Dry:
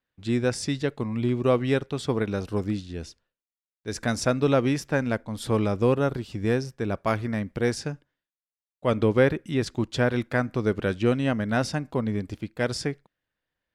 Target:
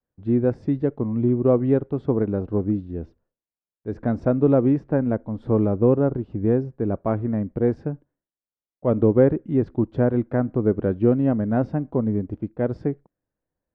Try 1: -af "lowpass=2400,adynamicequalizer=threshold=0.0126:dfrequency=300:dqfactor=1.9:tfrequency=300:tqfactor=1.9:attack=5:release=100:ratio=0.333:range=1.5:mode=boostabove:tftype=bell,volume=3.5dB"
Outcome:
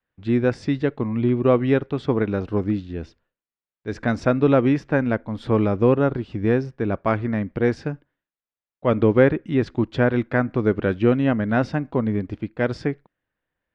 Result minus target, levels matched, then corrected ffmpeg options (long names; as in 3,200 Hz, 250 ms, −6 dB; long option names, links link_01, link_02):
2,000 Hz band +12.5 dB
-af "lowpass=740,adynamicequalizer=threshold=0.0126:dfrequency=300:dqfactor=1.9:tfrequency=300:tqfactor=1.9:attack=5:release=100:ratio=0.333:range=1.5:mode=boostabove:tftype=bell,volume=3.5dB"